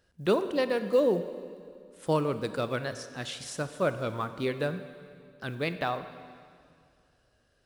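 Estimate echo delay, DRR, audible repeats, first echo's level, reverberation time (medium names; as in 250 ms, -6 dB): no echo, 10.5 dB, no echo, no echo, 2.3 s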